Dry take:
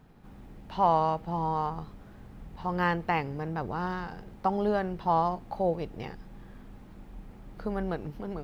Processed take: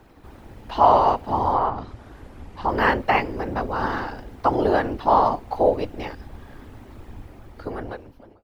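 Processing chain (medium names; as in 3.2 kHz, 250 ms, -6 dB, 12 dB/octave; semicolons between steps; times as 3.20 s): fade out at the end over 1.34 s; 1.52–2.69 s: low-pass that closes with the level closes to 2.7 kHz, closed at -26 dBFS; whisper effect; peaking EQ 160 Hz -13 dB 0.77 oct; trim +9 dB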